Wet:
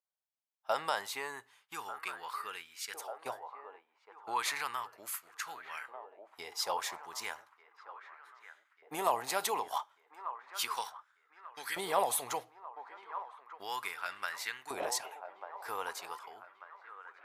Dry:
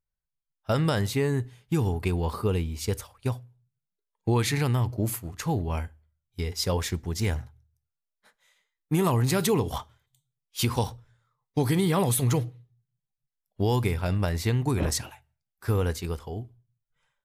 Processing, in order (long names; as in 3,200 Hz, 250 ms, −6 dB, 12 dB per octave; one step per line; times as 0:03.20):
delay with a band-pass on its return 1,192 ms, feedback 63%, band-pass 850 Hz, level −10.5 dB
auto-filter high-pass saw up 0.34 Hz 660–1,600 Hz
level −6 dB